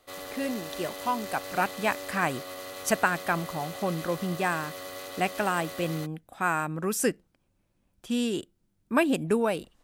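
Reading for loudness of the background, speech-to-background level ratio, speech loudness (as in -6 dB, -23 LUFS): -39.0 LUFS, 9.5 dB, -29.5 LUFS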